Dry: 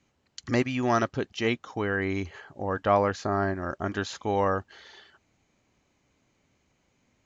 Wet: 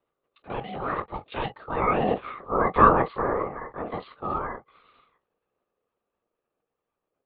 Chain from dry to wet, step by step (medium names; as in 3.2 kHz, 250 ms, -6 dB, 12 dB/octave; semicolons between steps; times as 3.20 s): Doppler pass-by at 2.43 s, 15 m/s, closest 6.2 m; resonant low shelf 130 Hz -10.5 dB, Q 3; on a send at -7 dB: reverberation, pre-delay 3 ms; on the sum: LPC vocoder at 8 kHz whisper; ring modulator 470 Hz; peaking EQ 1.2 kHz +14 dB 0.33 oct; trim +4.5 dB